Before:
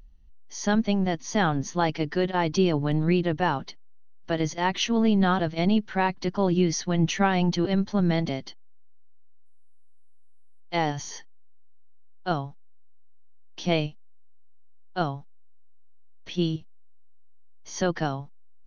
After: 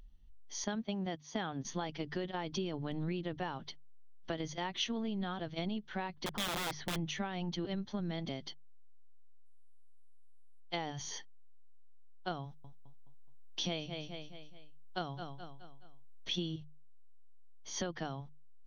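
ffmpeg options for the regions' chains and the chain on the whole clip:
-filter_complex "[0:a]asettb=1/sr,asplit=3[s0][s1][s2];[s0]atrim=end=0.644[s3];[s1]atrim=start=0.64:end=1.65,asetpts=PTS-STARTPTS,afade=t=in:d=0.004:c=qsin,afade=t=out:st=1.006:d=0.004:c=qsin,agate=range=0.355:threshold=0.0355:ratio=16:release=100:detection=peak,highpass=f=120:p=1,highshelf=f=4800:g=-4[s4];[s2]atrim=start=1.646[s5];[s3][s4]acrossfade=d=0.004:c1=hsin:c2=qsin[s6];[s6][s5]acrossfade=d=0.004:c1=qsin:c2=hsin,asettb=1/sr,asplit=3[s7][s8][s9];[s7]atrim=end=6.264[s10];[s8]atrim=start=6.26:end=6.96,asetpts=PTS-STARTPTS,afade=t=in:d=0.004:c=qsin,afade=t=out:st=0.696:d=0.004:c=qsin,lowpass=2700,aeval=exprs='(mod(11.9*val(0)+1,2)-1)/11.9':c=same[s11];[s9]atrim=start=6.956[s12];[s10][s11]acrossfade=d=0.004:c1=hsin:c2=qsin[s13];[s13][s12]acrossfade=d=0.004:c1=qsin:c2=hsin,asettb=1/sr,asplit=3[s14][s15][s16];[s14]atrim=end=12.434[s17];[s15]atrim=start=12.43:end=16.42,asetpts=PTS-STARTPTS,afade=t=in:d=0.004:c=qsin,afade=t=out:st=3.986:d=0.004:c=qsin,highshelf=f=5300:g=9,aecho=1:1:211|422|633|844:0.237|0.107|0.048|0.0216,atrim=end_sample=175959[s18];[s16]atrim=start=16.416[s19];[s17][s18]acrossfade=d=0.004:c1=hsin:c2=qsin[s20];[s20][s19]acrossfade=d=0.004:c1=qsin:c2=hsin,bandreject=f=50:t=h:w=6,bandreject=f=100:t=h:w=6,bandreject=f=150:t=h:w=6,acompressor=threshold=0.0316:ratio=6,equalizer=f=3400:t=o:w=0.25:g=8,volume=0.596"

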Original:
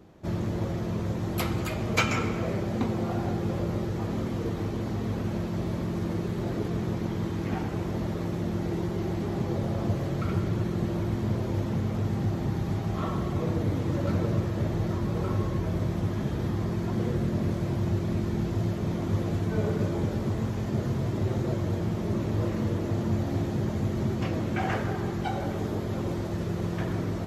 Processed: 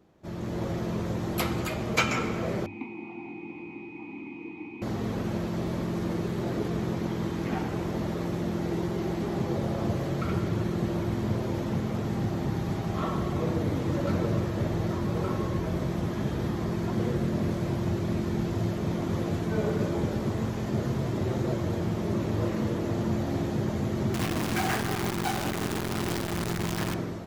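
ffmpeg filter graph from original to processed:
-filter_complex "[0:a]asettb=1/sr,asplit=3[s0][s1][s2];[s0]atrim=end=2.664[s3];[s1]atrim=start=2.66:end=4.82,asetpts=PTS-STARTPTS,afade=t=in:d=0.004:c=qsin,afade=t=out:st=2.156:d=0.004:c=qsin,equalizer=f=2400:t=o:w=0.7:g=10.5,aeval=exprs='val(0)+0.0158*sin(2*PI*2500*n/s)':c=same,asplit=3[s4][s5][s6];[s4]bandpass=f=300:t=q:w=8,volume=1[s7];[s5]bandpass=f=870:t=q:w=8,volume=0.501[s8];[s6]bandpass=f=2240:t=q:w=8,volume=0.355[s9];[s7][s8][s9]amix=inputs=3:normalize=0[s10];[s2]atrim=start=4.816[s11];[s3][s10]acrossfade=d=0.004:c1=hsin:c2=qsin[s12];[s12][s11]acrossfade=d=0.004:c1=qsin:c2=hsin,asettb=1/sr,asplit=3[s13][s14][s15];[s13]atrim=end=24.144[s16];[s14]atrim=start=24.14:end=26.94,asetpts=PTS-STARTPTS,afade=t=in:d=0.004:c=qsin,afade=t=out:st=2.796:d=0.004:c=qsin,equalizer=f=530:w=5.1:g=-12,acrusher=bits=6:dc=4:mix=0:aa=0.000001[s17];[s15]atrim=start=26.936[s18];[s16][s17]acrossfade=d=0.004:c1=hsin:c2=qsin[s19];[s19][s18]acrossfade=d=0.004:c1=qsin:c2=hsin,lowshelf=f=200:g=-3.5,bandreject=f=50:t=h:w=6,bandreject=f=100:t=h:w=6,dynaudnorm=f=180:g=5:m=2.82,volume=0.447"

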